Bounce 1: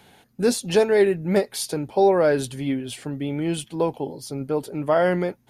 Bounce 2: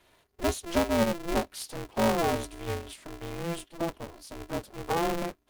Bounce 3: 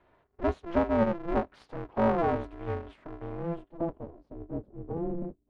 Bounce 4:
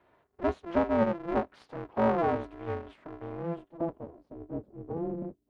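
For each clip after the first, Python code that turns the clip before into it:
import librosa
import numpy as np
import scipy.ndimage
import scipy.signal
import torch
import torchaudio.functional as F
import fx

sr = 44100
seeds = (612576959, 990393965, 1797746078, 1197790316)

y1 = fx.env_flanger(x, sr, rest_ms=4.0, full_db=-18.0)
y1 = y1 * np.sign(np.sin(2.0 * np.pi * 170.0 * np.arange(len(y1)) / sr))
y1 = y1 * 10.0 ** (-7.0 / 20.0)
y2 = fx.filter_sweep_lowpass(y1, sr, from_hz=1400.0, to_hz=330.0, start_s=2.98, end_s=4.87, q=0.84)
y3 = fx.highpass(y2, sr, hz=110.0, slope=6)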